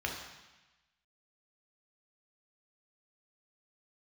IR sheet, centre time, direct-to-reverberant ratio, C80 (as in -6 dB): 43 ms, 0.5 dB, 6.5 dB